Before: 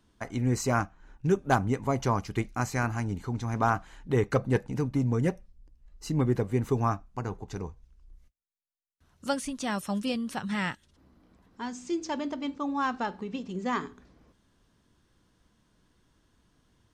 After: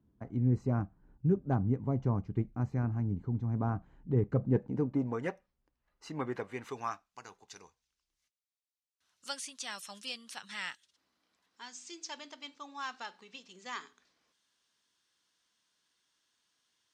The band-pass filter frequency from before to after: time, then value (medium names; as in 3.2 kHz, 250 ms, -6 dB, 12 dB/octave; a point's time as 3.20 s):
band-pass filter, Q 0.72
4.34 s 140 Hz
4.98 s 480 Hz
5.21 s 1.3 kHz
6.23 s 1.3 kHz
7.19 s 5 kHz